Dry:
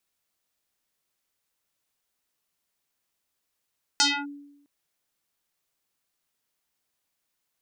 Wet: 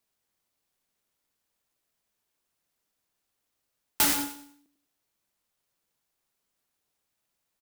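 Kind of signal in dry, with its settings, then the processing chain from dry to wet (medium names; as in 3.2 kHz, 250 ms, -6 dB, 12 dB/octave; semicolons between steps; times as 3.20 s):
FM tone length 0.66 s, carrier 286 Hz, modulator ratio 3.99, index 5.9, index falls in 0.26 s linear, decay 0.87 s, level -15.5 dB
feedback delay 96 ms, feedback 32%, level -9 dB; sampling jitter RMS 0.15 ms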